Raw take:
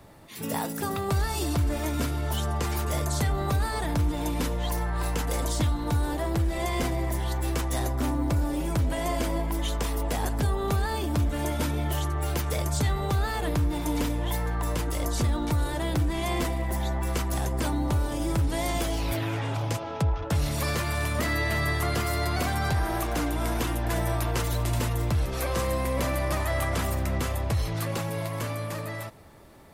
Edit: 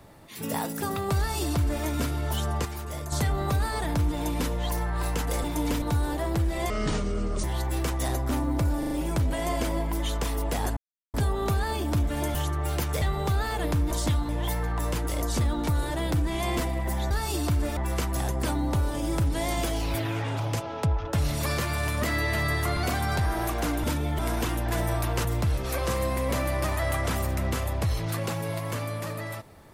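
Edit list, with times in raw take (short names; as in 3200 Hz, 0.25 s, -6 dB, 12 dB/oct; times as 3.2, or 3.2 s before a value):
1.18–1.84 copy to 16.94
2.65–3.12 gain -7 dB
5.44–5.82 swap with 13.74–14.12
6.7–7.15 speed 61%
8.5 stutter 0.04 s, 4 plays
10.36 insert silence 0.37 s
11.57–11.92 move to 23.37
12.59–12.85 cut
21.94–22.3 cut
24.43–24.93 cut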